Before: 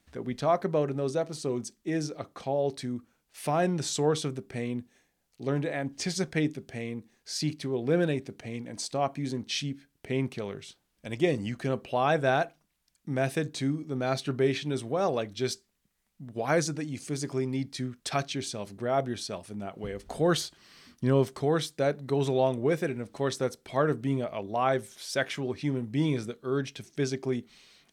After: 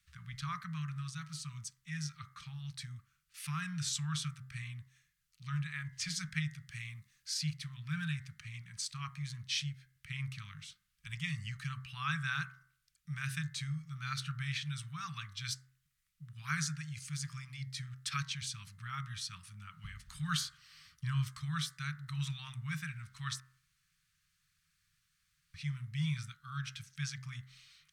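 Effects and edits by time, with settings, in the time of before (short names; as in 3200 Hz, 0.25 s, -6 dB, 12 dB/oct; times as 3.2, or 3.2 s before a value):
6.71–7.34 high shelf 3900 Hz +5 dB
23.4–25.54 room tone
whole clip: Chebyshev band-stop 160–1200 Hz, order 4; de-hum 65.1 Hz, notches 33; gain -3 dB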